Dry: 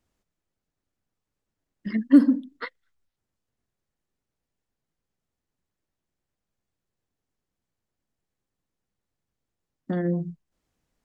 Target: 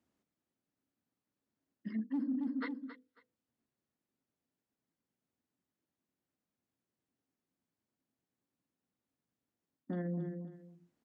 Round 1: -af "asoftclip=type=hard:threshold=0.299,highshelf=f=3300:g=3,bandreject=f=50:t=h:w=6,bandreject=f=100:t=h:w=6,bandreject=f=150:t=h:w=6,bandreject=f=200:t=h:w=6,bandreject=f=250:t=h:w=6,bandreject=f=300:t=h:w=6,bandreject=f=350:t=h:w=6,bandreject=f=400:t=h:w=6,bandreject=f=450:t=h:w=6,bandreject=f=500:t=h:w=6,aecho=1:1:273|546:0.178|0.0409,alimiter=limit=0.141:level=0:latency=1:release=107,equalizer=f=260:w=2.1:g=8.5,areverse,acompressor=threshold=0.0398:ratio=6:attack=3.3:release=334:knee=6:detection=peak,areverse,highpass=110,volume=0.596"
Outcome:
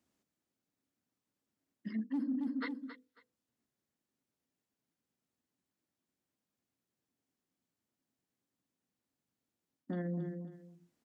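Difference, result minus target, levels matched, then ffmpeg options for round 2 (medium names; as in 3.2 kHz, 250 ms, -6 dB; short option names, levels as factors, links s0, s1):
4 kHz band +4.0 dB
-af "asoftclip=type=hard:threshold=0.299,highshelf=f=3300:g=-5,bandreject=f=50:t=h:w=6,bandreject=f=100:t=h:w=6,bandreject=f=150:t=h:w=6,bandreject=f=200:t=h:w=6,bandreject=f=250:t=h:w=6,bandreject=f=300:t=h:w=6,bandreject=f=350:t=h:w=6,bandreject=f=400:t=h:w=6,bandreject=f=450:t=h:w=6,bandreject=f=500:t=h:w=6,aecho=1:1:273|546:0.178|0.0409,alimiter=limit=0.141:level=0:latency=1:release=107,equalizer=f=260:w=2.1:g=8.5,areverse,acompressor=threshold=0.0398:ratio=6:attack=3.3:release=334:knee=6:detection=peak,areverse,highpass=110,volume=0.596"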